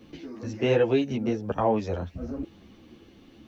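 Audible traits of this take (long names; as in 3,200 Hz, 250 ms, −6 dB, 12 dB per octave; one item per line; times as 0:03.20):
a quantiser's noise floor 12 bits, dither none
a shimmering, thickened sound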